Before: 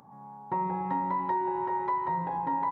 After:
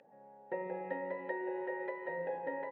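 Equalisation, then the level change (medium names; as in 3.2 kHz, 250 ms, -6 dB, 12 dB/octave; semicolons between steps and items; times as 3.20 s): vowel filter e; high-pass 130 Hz; +9.5 dB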